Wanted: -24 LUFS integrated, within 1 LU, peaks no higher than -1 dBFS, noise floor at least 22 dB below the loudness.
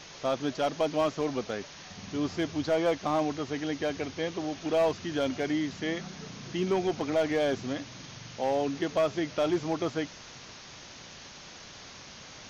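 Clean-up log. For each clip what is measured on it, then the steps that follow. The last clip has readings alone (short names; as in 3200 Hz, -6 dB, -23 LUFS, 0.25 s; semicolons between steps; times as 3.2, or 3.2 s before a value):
clipped 0.8%; flat tops at -20.0 dBFS; noise floor -48 dBFS; noise floor target -53 dBFS; loudness -30.5 LUFS; peak -20.0 dBFS; loudness target -24.0 LUFS
-> clip repair -20 dBFS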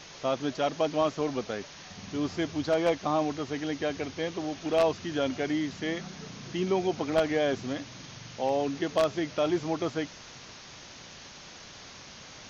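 clipped 0.0%; noise floor -48 dBFS; noise floor target -52 dBFS
-> noise print and reduce 6 dB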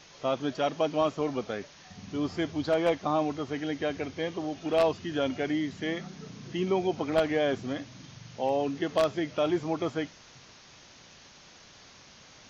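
noise floor -54 dBFS; loudness -30.0 LUFS; peak -11.0 dBFS; loudness target -24.0 LUFS
-> gain +6 dB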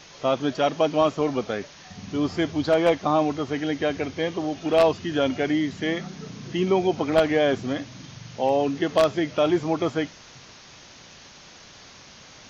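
loudness -24.0 LUFS; peak -5.0 dBFS; noise floor -48 dBFS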